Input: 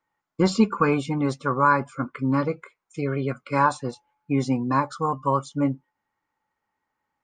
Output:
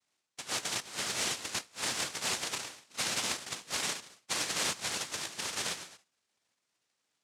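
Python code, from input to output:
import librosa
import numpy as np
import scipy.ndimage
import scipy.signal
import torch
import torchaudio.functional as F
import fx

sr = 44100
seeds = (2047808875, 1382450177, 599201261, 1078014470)

y = fx.frame_reverse(x, sr, frame_ms=32.0)
y = scipy.signal.sosfilt(scipy.signal.butter(2, 350.0, 'highpass', fs=sr, output='sos'), y)
y = fx.rev_gated(y, sr, seeds[0], gate_ms=310, shape='falling', drr_db=8.5)
y = fx.noise_vocoder(y, sr, seeds[1], bands=1)
y = fx.over_compress(y, sr, threshold_db=-33.0, ratio=-0.5)
y = F.gain(torch.from_numpy(y), -2.5).numpy()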